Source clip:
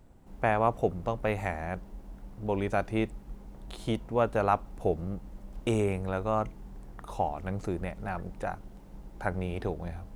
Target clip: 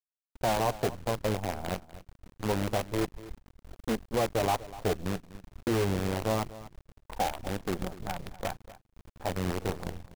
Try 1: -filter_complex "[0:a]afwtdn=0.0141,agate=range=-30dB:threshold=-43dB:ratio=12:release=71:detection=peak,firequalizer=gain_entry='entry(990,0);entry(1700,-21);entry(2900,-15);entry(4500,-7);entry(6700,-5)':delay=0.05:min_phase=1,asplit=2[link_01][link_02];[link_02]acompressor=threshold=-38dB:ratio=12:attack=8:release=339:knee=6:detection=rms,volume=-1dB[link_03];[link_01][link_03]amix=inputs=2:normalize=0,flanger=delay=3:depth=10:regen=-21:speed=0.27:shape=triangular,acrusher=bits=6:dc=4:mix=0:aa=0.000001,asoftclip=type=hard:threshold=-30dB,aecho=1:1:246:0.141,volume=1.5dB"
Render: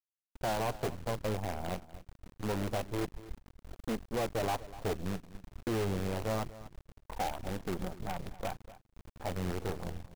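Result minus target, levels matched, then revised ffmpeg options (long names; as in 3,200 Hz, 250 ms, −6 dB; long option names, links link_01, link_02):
hard clipping: distortion +11 dB
-filter_complex "[0:a]afwtdn=0.0141,agate=range=-30dB:threshold=-43dB:ratio=12:release=71:detection=peak,firequalizer=gain_entry='entry(990,0);entry(1700,-21);entry(2900,-15);entry(4500,-7);entry(6700,-5)':delay=0.05:min_phase=1,asplit=2[link_01][link_02];[link_02]acompressor=threshold=-38dB:ratio=12:attack=8:release=339:knee=6:detection=rms,volume=-1dB[link_03];[link_01][link_03]amix=inputs=2:normalize=0,flanger=delay=3:depth=10:regen=-21:speed=0.27:shape=triangular,acrusher=bits=6:dc=4:mix=0:aa=0.000001,asoftclip=type=hard:threshold=-22dB,aecho=1:1:246:0.141,volume=1.5dB"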